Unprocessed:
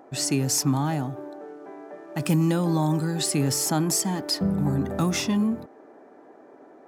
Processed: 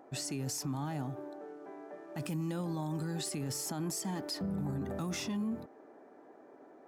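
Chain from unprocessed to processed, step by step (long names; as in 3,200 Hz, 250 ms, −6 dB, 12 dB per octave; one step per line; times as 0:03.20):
brickwall limiter −22.5 dBFS, peak gain reduction 10 dB
level −6.5 dB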